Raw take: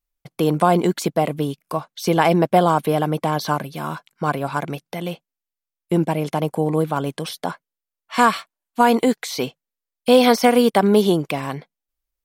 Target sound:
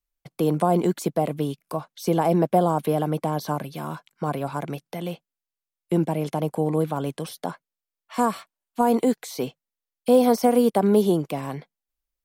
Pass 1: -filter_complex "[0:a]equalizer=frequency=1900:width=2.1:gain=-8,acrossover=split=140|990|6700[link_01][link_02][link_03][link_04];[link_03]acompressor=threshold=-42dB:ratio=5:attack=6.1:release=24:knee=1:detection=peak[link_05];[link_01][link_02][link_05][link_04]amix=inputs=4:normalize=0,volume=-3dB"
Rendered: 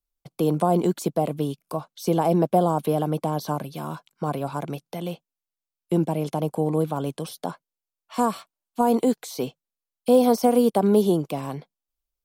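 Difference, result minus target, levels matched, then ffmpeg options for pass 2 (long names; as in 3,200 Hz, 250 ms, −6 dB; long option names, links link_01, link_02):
2,000 Hz band −3.5 dB
-filter_complex "[0:a]acrossover=split=140|990|6700[link_01][link_02][link_03][link_04];[link_03]acompressor=threshold=-42dB:ratio=5:attack=6.1:release=24:knee=1:detection=peak[link_05];[link_01][link_02][link_05][link_04]amix=inputs=4:normalize=0,volume=-3dB"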